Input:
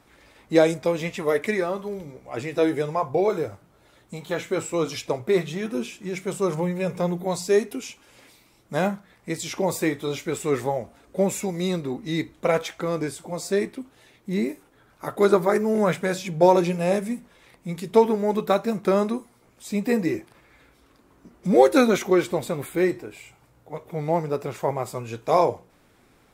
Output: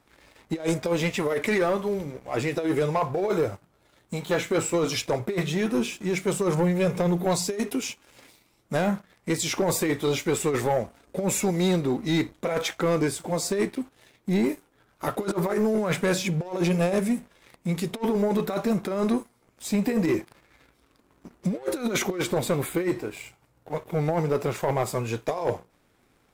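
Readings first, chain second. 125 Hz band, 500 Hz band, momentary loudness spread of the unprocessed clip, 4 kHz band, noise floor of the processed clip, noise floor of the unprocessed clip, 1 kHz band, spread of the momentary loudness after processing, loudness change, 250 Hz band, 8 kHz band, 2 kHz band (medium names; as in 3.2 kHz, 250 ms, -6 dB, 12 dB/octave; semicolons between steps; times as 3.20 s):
+2.5 dB, -3.5 dB, 15 LU, +2.5 dB, -65 dBFS, -59 dBFS, -4.5 dB, 8 LU, -2.0 dB, -0.5 dB, +4.0 dB, 0.0 dB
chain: compressor with a negative ratio -23 dBFS, ratio -0.5; waveshaping leveller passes 2; trim -5.5 dB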